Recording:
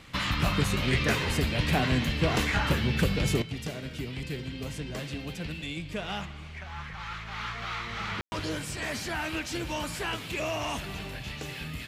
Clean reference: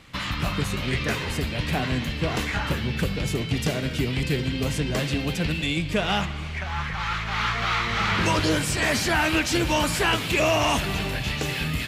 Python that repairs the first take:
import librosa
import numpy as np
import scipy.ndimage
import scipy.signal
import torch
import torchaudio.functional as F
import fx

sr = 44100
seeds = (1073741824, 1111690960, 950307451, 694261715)

y = fx.fix_ambience(x, sr, seeds[0], print_start_s=6.26, print_end_s=6.76, start_s=8.21, end_s=8.32)
y = fx.gain(y, sr, db=fx.steps((0.0, 0.0), (3.42, 10.5)))